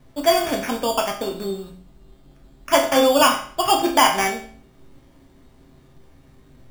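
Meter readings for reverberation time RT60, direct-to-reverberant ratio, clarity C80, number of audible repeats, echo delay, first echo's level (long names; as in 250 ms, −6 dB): 0.50 s, 0.0 dB, 12.0 dB, no echo audible, no echo audible, no echo audible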